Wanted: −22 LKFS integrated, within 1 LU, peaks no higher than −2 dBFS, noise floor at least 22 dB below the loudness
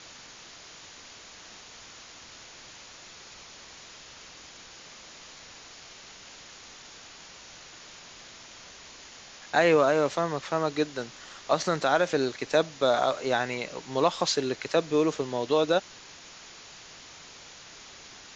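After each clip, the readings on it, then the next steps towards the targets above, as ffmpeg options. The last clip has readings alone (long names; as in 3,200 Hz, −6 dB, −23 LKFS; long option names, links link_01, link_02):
background noise floor −48 dBFS; target noise floor −49 dBFS; integrated loudness −26.5 LKFS; sample peak −8.5 dBFS; target loudness −22.0 LKFS
→ -af "afftdn=noise_reduction=6:noise_floor=-48"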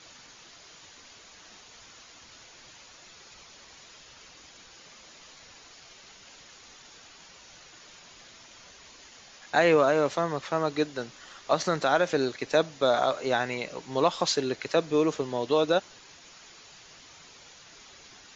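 background noise floor −52 dBFS; integrated loudness −26.5 LKFS; sample peak −8.5 dBFS; target loudness −22.0 LKFS
→ -af "volume=4.5dB"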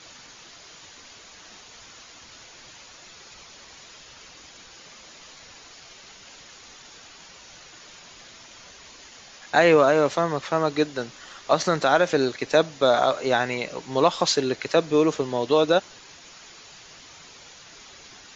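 integrated loudness −22.0 LKFS; sample peak −4.0 dBFS; background noise floor −48 dBFS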